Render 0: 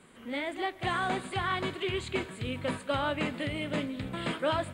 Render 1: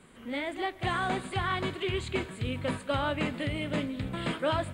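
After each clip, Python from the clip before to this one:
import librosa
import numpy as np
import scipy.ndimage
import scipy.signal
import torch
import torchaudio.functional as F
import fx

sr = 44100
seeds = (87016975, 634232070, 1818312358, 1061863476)

y = fx.low_shelf(x, sr, hz=110.0, db=7.5)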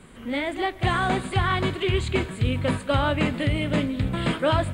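y = fx.low_shelf(x, sr, hz=120.0, db=8.0)
y = y * librosa.db_to_amplitude(6.0)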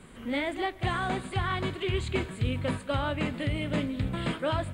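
y = fx.rider(x, sr, range_db=4, speed_s=0.5)
y = y * librosa.db_to_amplitude(-6.0)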